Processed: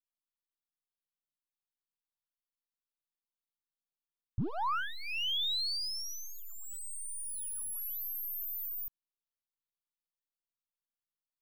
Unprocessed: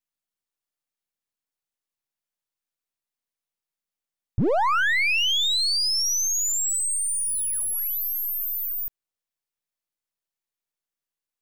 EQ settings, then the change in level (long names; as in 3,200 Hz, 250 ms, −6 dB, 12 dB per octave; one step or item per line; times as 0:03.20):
parametric band 2,000 Hz −10 dB 0.45 octaves
phaser with its sweep stopped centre 2,000 Hz, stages 6
−9.0 dB